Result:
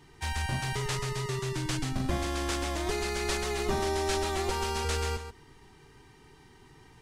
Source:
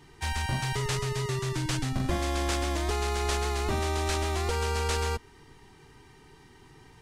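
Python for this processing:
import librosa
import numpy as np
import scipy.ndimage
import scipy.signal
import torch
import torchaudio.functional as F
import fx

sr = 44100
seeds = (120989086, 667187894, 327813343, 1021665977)

y = fx.comb(x, sr, ms=5.3, depth=0.66, at=(2.86, 4.85))
y = y + 10.0 ** (-10.0 / 20.0) * np.pad(y, (int(138 * sr / 1000.0), 0))[:len(y)]
y = F.gain(torch.from_numpy(y), -2.0).numpy()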